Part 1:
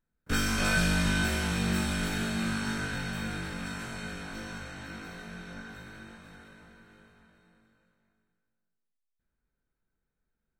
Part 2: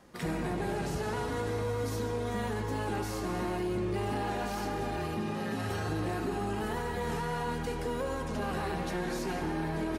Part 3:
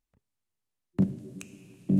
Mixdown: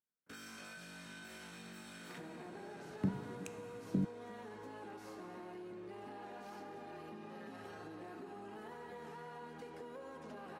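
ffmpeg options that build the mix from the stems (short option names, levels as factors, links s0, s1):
-filter_complex "[0:a]alimiter=limit=0.075:level=0:latency=1,volume=0.178[s0];[1:a]highshelf=f=3800:g=-8.5,adelay=1950,volume=0.668[s1];[2:a]acompressor=threshold=0.0631:ratio=6,adelay=2050,volume=0.501[s2];[s0][s1]amix=inputs=2:normalize=0,highpass=220,acompressor=threshold=0.00398:ratio=5,volume=1[s3];[s2][s3]amix=inputs=2:normalize=0"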